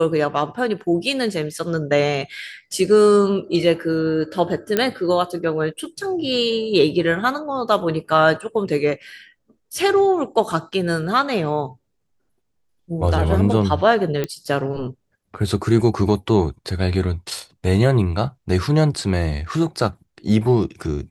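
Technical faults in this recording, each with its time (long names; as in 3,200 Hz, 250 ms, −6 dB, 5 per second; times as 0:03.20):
0:04.77: click −4 dBFS
0:14.24: click −10 dBFS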